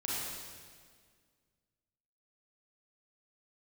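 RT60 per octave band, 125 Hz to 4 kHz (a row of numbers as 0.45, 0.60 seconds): 2.3, 2.2, 2.0, 1.7, 1.7, 1.6 seconds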